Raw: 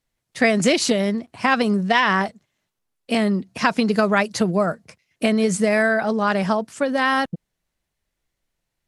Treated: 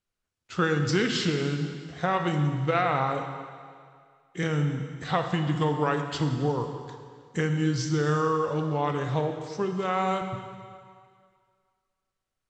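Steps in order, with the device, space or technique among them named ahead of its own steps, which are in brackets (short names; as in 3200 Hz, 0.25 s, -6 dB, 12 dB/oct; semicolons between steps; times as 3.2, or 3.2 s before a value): slowed and reverbed (varispeed -29%; reverb RT60 2.1 s, pre-delay 31 ms, DRR 5.5 dB); gain -8 dB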